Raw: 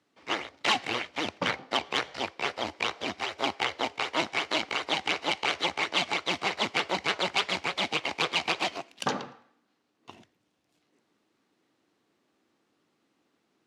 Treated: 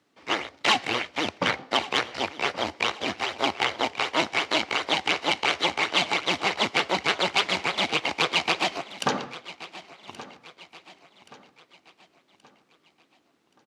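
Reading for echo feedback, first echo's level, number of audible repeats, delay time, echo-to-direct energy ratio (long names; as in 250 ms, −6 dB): 43%, −17.0 dB, 3, 1,126 ms, −16.0 dB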